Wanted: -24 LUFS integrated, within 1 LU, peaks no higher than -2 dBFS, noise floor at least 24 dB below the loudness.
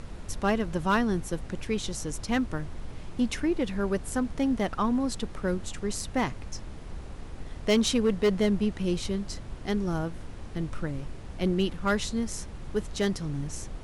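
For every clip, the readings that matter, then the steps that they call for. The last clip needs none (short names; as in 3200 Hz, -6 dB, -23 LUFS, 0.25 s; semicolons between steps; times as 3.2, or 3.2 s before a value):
clipped 0.4%; flat tops at -17.5 dBFS; noise floor -42 dBFS; noise floor target -54 dBFS; loudness -29.5 LUFS; peak -17.5 dBFS; loudness target -24.0 LUFS
-> clip repair -17.5 dBFS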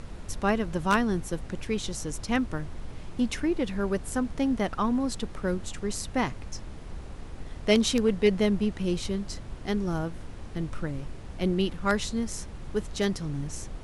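clipped 0.0%; noise floor -42 dBFS; noise floor target -53 dBFS
-> noise print and reduce 11 dB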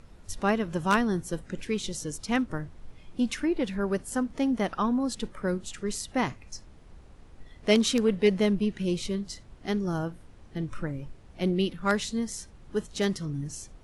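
noise floor -52 dBFS; noise floor target -53 dBFS
-> noise print and reduce 6 dB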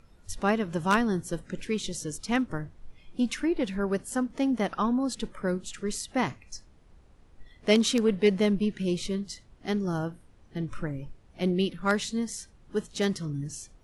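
noise floor -57 dBFS; loudness -29.0 LUFS; peak -8.5 dBFS; loudness target -24.0 LUFS
-> gain +5 dB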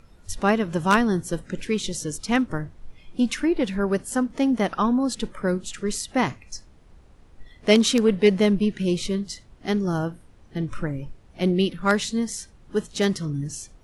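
loudness -24.0 LUFS; peak -3.5 dBFS; noise floor -52 dBFS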